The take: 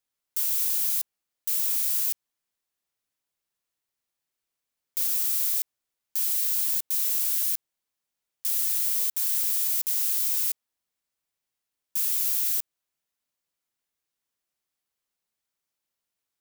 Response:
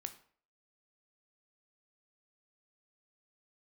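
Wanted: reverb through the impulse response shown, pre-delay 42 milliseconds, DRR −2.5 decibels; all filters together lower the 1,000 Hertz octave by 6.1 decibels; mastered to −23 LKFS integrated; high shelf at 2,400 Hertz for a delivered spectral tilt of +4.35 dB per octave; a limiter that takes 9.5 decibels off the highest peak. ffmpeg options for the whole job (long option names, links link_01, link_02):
-filter_complex "[0:a]equalizer=frequency=1000:width_type=o:gain=-6,highshelf=frequency=2400:gain=-9,alimiter=level_in=6dB:limit=-24dB:level=0:latency=1,volume=-6dB,asplit=2[link_01][link_02];[1:a]atrim=start_sample=2205,adelay=42[link_03];[link_02][link_03]afir=irnorm=-1:irlink=0,volume=5.5dB[link_04];[link_01][link_04]amix=inputs=2:normalize=0,volume=10.5dB"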